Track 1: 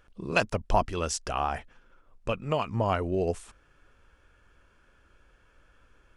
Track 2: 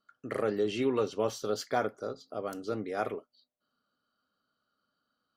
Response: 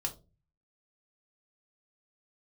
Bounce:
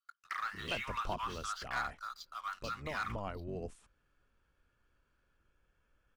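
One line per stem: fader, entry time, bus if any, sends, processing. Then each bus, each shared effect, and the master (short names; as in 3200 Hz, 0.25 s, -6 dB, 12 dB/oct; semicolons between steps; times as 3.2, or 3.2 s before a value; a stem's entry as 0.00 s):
-15.0 dB, 0.35 s, no send, octaver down 1 oct, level -1 dB
-5.5 dB, 0.00 s, no send, steep high-pass 1000 Hz 48 dB/oct; treble ducked by the level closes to 2200 Hz, closed at -39 dBFS; sample leveller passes 3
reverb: off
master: dry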